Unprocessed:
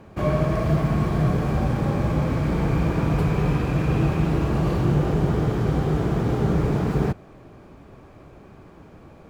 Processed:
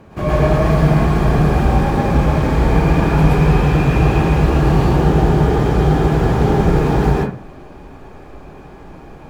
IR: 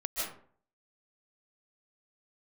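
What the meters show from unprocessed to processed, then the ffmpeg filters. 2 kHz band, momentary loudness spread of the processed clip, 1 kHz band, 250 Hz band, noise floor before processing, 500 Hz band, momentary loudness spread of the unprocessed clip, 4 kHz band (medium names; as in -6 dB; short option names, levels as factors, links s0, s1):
+10.0 dB, 2 LU, +11.0 dB, +7.0 dB, -47 dBFS, +8.5 dB, 2 LU, +9.0 dB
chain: -filter_complex "[1:a]atrim=start_sample=2205,asetrate=57330,aresample=44100[s0];[0:a][s0]afir=irnorm=-1:irlink=0,volume=2.24"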